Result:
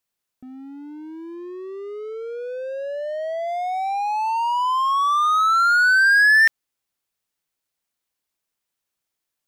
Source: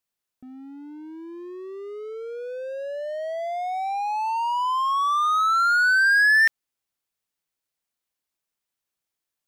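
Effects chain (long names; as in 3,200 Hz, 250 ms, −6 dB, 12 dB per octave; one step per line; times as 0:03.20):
0:01.34–0:03.47: high-shelf EQ 9,200 Hz → 5,100 Hz −6 dB
level +3 dB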